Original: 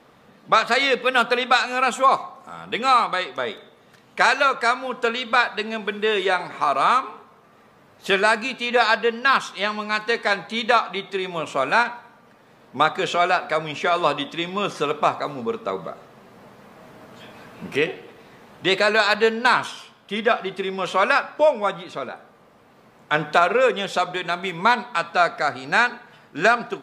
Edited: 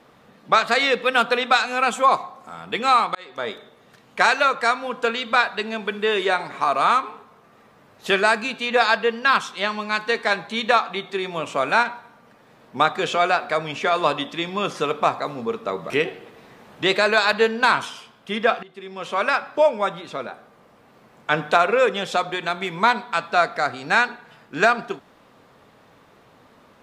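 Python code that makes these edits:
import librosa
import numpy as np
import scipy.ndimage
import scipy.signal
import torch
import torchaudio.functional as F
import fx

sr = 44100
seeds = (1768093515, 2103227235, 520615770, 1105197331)

y = fx.edit(x, sr, fx.fade_in_span(start_s=3.15, length_s=0.34),
    fx.cut(start_s=15.9, length_s=1.82),
    fx.fade_in_from(start_s=20.45, length_s=0.9, floor_db=-20.5), tone=tone)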